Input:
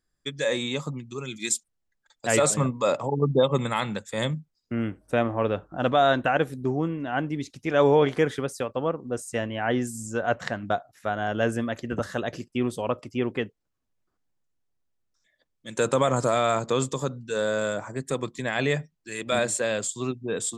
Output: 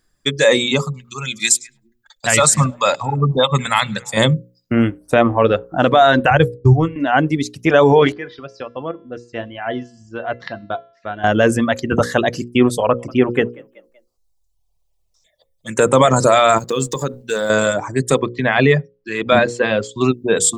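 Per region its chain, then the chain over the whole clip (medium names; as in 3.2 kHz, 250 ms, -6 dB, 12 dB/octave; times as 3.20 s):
0.84–4.17 s: peaking EQ 370 Hz -14.5 dB 1.5 oct + repeats whose band climbs or falls 103 ms, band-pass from 5 kHz, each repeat -1.4 oct, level -10.5 dB
6.30–6.96 s: expander -24 dBFS + resonant low shelf 150 Hz +12.5 dB, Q 3
8.12–11.24 s: steep low-pass 5.1 kHz + feedback comb 340 Hz, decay 0.63 s, mix 80%
12.80–15.94 s: touch-sensitive phaser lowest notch 260 Hz, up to 4.7 kHz, full sweep at -26.5 dBFS + frequency-shifting echo 189 ms, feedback 38%, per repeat +39 Hz, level -17 dB
16.58–17.50 s: companding laws mixed up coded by A + compression 2:1, threshold -32 dBFS
18.20–20.01 s: distance through air 240 m + band-stop 570 Hz, Q 16
whole clip: reverb removal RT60 0.99 s; hum notches 60/120/180/240/300/360/420/480/540 Hz; loudness maximiser +15.5 dB; trim -1 dB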